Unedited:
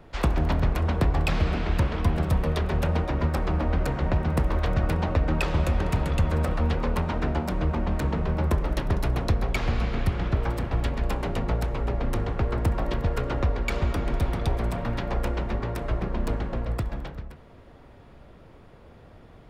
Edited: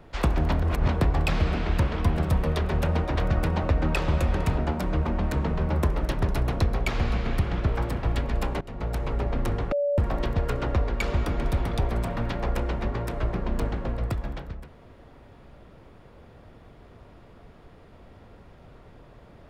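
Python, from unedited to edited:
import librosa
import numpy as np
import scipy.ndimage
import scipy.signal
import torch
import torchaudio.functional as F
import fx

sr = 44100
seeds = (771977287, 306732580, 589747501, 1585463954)

y = fx.edit(x, sr, fx.reverse_span(start_s=0.63, length_s=0.25),
    fx.cut(start_s=3.16, length_s=1.46),
    fx.cut(start_s=6.04, length_s=1.22),
    fx.fade_in_from(start_s=11.29, length_s=0.43, floor_db=-21.5),
    fx.bleep(start_s=12.4, length_s=0.26, hz=574.0, db=-21.5), tone=tone)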